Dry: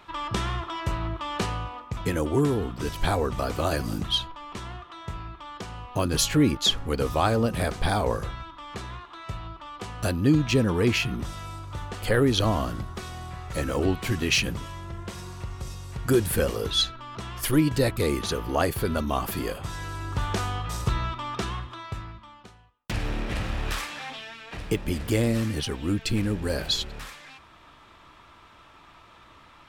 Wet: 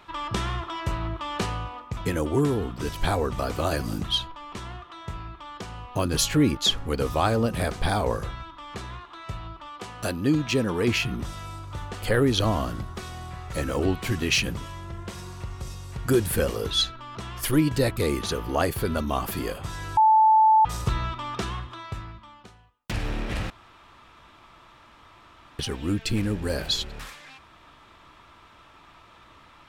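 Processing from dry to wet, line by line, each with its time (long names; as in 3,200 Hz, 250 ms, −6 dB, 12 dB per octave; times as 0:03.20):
0:09.68–0:10.88: low-shelf EQ 110 Hz −12 dB
0:19.97–0:20.65: beep over 875 Hz −13.5 dBFS
0:23.50–0:25.59: fill with room tone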